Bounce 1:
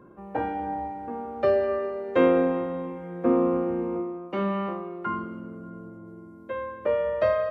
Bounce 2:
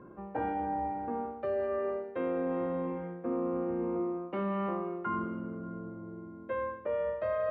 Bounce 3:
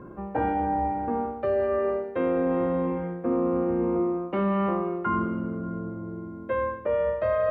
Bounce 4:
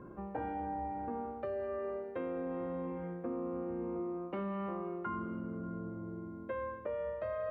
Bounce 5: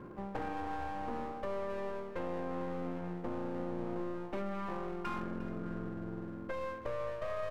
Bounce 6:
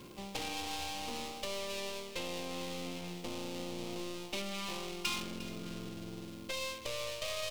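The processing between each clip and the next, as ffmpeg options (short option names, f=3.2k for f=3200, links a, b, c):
-af "lowpass=2.5k,areverse,acompressor=threshold=-29dB:ratio=12,areverse"
-af "lowshelf=f=87:g=9.5,volume=7dB"
-af "acompressor=threshold=-30dB:ratio=3,volume=-7dB"
-af "aeval=exprs='clip(val(0),-1,0.00316)':c=same,aecho=1:1:354:0.188,volume=3dB"
-af "aexciter=amount=9.5:drive=8.7:freq=2.5k,volume=-3.5dB"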